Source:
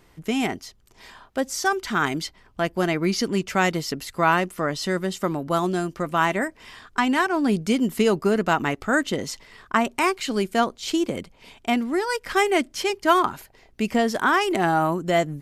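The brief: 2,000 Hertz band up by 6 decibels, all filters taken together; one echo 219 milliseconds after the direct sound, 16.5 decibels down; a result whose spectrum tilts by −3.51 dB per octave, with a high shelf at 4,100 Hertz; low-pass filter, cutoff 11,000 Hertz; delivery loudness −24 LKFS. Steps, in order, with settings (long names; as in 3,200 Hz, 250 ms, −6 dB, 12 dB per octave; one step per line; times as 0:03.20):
low-pass filter 11,000 Hz
parametric band 2,000 Hz +6.5 dB
high-shelf EQ 4,100 Hz +6.5 dB
single-tap delay 219 ms −16.5 dB
level −3 dB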